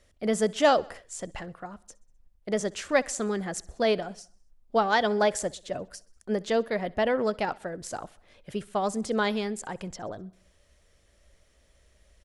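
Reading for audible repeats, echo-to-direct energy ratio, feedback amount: 3, −22.0 dB, 60%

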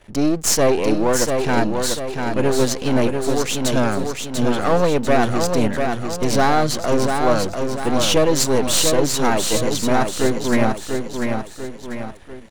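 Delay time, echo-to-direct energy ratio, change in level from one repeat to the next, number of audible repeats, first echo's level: 693 ms, −4.0 dB, −6.5 dB, 4, −5.0 dB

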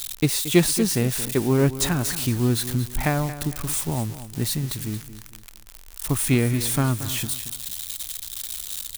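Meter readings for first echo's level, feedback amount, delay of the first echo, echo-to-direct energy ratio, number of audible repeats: −13.5 dB, 35%, 227 ms, −13.0 dB, 3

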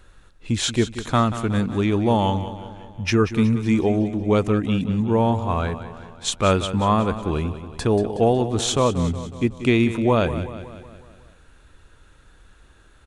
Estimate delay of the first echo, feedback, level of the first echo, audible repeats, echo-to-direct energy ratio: 184 ms, 55%, −12.5 dB, 5, −11.0 dB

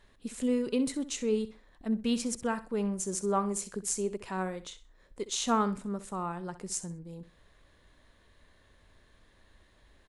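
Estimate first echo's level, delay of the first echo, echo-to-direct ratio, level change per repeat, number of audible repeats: −14.5 dB, 64 ms, −14.0 dB, −12.0 dB, 2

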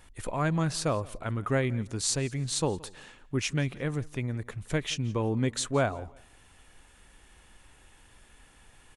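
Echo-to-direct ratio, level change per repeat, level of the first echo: −22.0 dB, −11.5 dB, −22.5 dB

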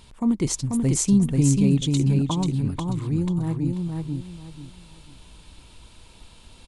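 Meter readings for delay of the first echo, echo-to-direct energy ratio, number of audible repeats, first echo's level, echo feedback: 488 ms, −3.0 dB, 3, −3.5 dB, 26%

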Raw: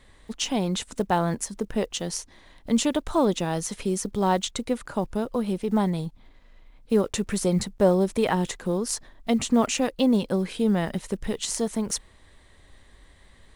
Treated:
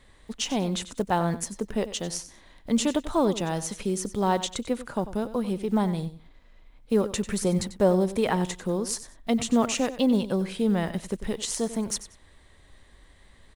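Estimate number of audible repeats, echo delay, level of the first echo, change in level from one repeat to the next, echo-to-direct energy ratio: 2, 94 ms, −14.0 dB, −13.0 dB, −14.0 dB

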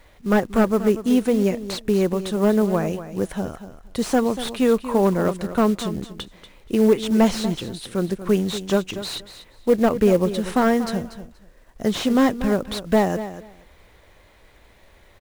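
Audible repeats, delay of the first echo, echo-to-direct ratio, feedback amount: 2, 238 ms, −12.5 dB, 17%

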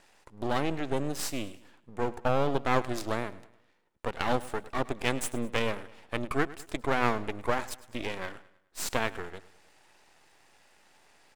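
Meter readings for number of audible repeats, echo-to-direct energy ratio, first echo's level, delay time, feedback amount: 3, −17.5 dB, −18.5 dB, 105 ms, 45%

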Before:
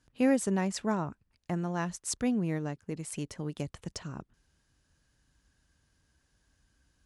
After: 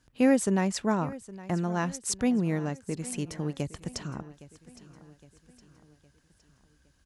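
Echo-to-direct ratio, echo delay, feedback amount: −17.0 dB, 813 ms, 50%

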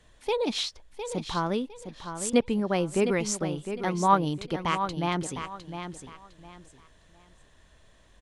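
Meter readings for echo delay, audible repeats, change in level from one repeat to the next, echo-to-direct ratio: 707 ms, 3, −11.5 dB, −8.5 dB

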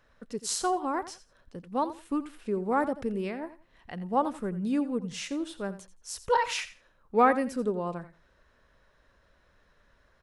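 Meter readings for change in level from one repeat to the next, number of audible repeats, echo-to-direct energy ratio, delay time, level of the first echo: −14.0 dB, 2, −14.5 dB, 86 ms, −14.5 dB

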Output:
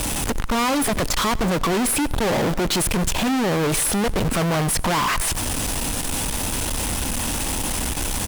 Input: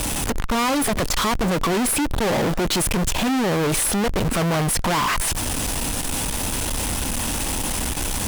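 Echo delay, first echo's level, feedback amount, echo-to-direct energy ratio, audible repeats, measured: 94 ms, −21.5 dB, 53%, −20.0 dB, 3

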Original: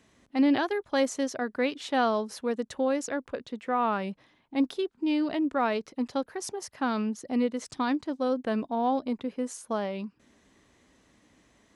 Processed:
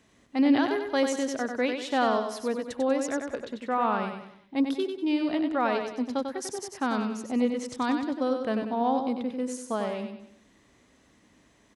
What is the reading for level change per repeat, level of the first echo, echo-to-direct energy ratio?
−7.5 dB, −6.0 dB, −5.0 dB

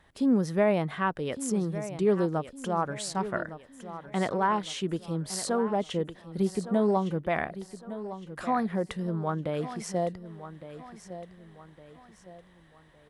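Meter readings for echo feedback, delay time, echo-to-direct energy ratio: 40%, 1,160 ms, −12.0 dB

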